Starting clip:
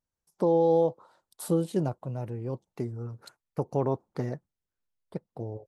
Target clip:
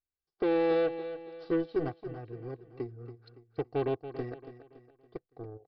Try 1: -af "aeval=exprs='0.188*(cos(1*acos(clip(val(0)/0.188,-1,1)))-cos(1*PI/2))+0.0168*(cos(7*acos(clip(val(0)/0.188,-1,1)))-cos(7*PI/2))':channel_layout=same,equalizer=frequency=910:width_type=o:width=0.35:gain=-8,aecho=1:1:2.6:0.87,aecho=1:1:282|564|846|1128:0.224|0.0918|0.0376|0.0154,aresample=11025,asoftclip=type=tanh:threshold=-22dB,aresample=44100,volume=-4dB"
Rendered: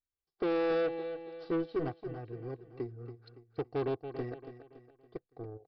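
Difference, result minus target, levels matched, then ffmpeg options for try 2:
soft clipping: distortion +9 dB
-af "aeval=exprs='0.188*(cos(1*acos(clip(val(0)/0.188,-1,1)))-cos(1*PI/2))+0.0168*(cos(7*acos(clip(val(0)/0.188,-1,1)))-cos(7*PI/2))':channel_layout=same,equalizer=frequency=910:width_type=o:width=0.35:gain=-8,aecho=1:1:2.6:0.87,aecho=1:1:282|564|846|1128:0.224|0.0918|0.0376|0.0154,aresample=11025,asoftclip=type=tanh:threshold=-15dB,aresample=44100,volume=-4dB"

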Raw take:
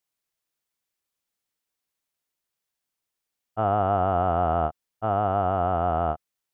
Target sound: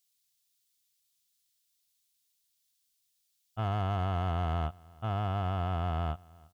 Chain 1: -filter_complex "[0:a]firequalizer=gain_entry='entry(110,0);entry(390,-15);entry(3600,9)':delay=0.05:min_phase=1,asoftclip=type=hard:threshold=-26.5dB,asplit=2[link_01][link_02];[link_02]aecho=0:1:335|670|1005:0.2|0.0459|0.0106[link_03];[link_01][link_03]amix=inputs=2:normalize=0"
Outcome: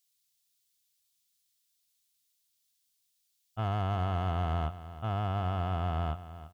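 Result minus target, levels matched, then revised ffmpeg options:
echo-to-direct +10.5 dB
-filter_complex "[0:a]firequalizer=gain_entry='entry(110,0);entry(390,-15);entry(3600,9)':delay=0.05:min_phase=1,asoftclip=type=hard:threshold=-26.5dB,asplit=2[link_01][link_02];[link_02]aecho=0:1:335|670:0.0596|0.0137[link_03];[link_01][link_03]amix=inputs=2:normalize=0"

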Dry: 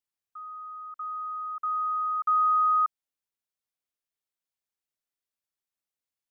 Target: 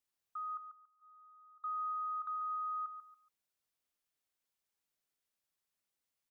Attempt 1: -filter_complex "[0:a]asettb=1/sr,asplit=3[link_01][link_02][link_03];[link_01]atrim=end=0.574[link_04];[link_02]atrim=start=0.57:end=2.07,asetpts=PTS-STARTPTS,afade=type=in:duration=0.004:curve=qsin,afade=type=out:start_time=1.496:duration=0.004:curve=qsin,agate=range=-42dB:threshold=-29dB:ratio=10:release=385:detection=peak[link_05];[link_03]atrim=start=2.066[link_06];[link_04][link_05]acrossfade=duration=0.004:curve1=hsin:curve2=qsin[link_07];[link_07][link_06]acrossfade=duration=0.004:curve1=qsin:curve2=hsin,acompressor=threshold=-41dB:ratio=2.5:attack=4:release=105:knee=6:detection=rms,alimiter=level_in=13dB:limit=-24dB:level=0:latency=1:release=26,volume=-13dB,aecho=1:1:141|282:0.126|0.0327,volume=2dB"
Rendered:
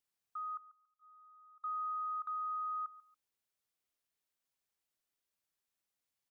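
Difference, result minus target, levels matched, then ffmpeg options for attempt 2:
echo-to-direct −8.5 dB
-filter_complex "[0:a]asettb=1/sr,asplit=3[link_01][link_02][link_03];[link_01]atrim=end=0.574[link_04];[link_02]atrim=start=0.57:end=2.07,asetpts=PTS-STARTPTS,afade=type=in:duration=0.004:curve=qsin,afade=type=out:start_time=1.496:duration=0.004:curve=qsin,agate=range=-42dB:threshold=-29dB:ratio=10:release=385:detection=peak[link_05];[link_03]atrim=start=2.066[link_06];[link_04][link_05]acrossfade=duration=0.004:curve1=hsin:curve2=qsin[link_07];[link_07][link_06]acrossfade=duration=0.004:curve1=qsin:curve2=hsin,acompressor=threshold=-41dB:ratio=2.5:attack=4:release=105:knee=6:detection=rms,alimiter=level_in=13dB:limit=-24dB:level=0:latency=1:release=26,volume=-13dB,aecho=1:1:141|282|423:0.335|0.0871|0.0226,volume=2dB"

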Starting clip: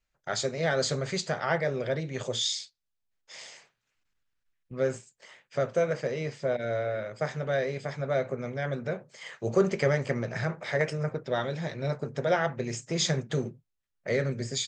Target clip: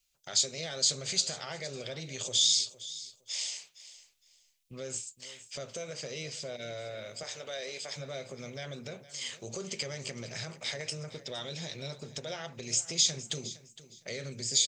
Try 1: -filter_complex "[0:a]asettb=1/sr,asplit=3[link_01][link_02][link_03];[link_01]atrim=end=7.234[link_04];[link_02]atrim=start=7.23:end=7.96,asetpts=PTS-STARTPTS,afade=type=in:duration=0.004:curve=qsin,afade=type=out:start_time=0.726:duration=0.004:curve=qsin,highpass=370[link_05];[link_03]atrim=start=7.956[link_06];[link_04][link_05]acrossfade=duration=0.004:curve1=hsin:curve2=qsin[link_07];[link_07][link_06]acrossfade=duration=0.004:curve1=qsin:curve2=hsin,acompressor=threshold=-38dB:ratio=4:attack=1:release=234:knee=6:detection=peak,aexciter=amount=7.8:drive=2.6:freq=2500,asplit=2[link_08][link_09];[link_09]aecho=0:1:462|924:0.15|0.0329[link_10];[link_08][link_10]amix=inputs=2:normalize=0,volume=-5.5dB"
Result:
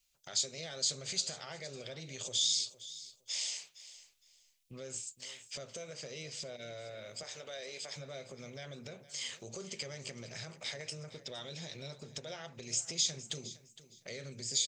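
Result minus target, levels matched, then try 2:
downward compressor: peak gain reduction +5.5 dB
-filter_complex "[0:a]asettb=1/sr,asplit=3[link_01][link_02][link_03];[link_01]atrim=end=7.234[link_04];[link_02]atrim=start=7.23:end=7.96,asetpts=PTS-STARTPTS,afade=type=in:duration=0.004:curve=qsin,afade=type=out:start_time=0.726:duration=0.004:curve=qsin,highpass=370[link_05];[link_03]atrim=start=7.956[link_06];[link_04][link_05]acrossfade=duration=0.004:curve1=hsin:curve2=qsin[link_07];[link_07][link_06]acrossfade=duration=0.004:curve1=qsin:curve2=hsin,acompressor=threshold=-30.5dB:ratio=4:attack=1:release=234:knee=6:detection=peak,aexciter=amount=7.8:drive=2.6:freq=2500,asplit=2[link_08][link_09];[link_09]aecho=0:1:462|924:0.15|0.0329[link_10];[link_08][link_10]amix=inputs=2:normalize=0,volume=-5.5dB"

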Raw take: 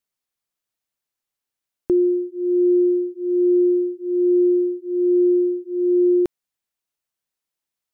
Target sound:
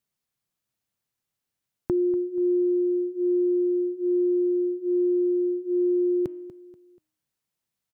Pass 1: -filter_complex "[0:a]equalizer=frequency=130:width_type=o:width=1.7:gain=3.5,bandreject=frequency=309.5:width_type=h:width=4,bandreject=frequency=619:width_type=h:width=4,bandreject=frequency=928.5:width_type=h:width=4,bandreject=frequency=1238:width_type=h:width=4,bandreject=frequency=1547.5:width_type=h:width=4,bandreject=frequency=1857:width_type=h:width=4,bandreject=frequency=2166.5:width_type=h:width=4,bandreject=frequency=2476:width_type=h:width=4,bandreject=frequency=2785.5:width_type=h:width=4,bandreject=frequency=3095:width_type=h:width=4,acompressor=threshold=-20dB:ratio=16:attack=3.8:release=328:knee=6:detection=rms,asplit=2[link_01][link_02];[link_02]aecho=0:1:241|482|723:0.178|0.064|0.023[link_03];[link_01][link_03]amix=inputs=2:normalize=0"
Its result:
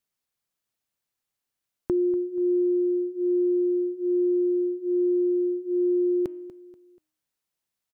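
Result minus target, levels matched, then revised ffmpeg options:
125 Hz band −3.5 dB
-filter_complex "[0:a]equalizer=frequency=130:width_type=o:width=1.7:gain=11,bandreject=frequency=309.5:width_type=h:width=4,bandreject=frequency=619:width_type=h:width=4,bandreject=frequency=928.5:width_type=h:width=4,bandreject=frequency=1238:width_type=h:width=4,bandreject=frequency=1547.5:width_type=h:width=4,bandreject=frequency=1857:width_type=h:width=4,bandreject=frequency=2166.5:width_type=h:width=4,bandreject=frequency=2476:width_type=h:width=4,bandreject=frequency=2785.5:width_type=h:width=4,bandreject=frequency=3095:width_type=h:width=4,acompressor=threshold=-20dB:ratio=16:attack=3.8:release=328:knee=6:detection=rms,asplit=2[link_01][link_02];[link_02]aecho=0:1:241|482|723:0.178|0.064|0.023[link_03];[link_01][link_03]amix=inputs=2:normalize=0"

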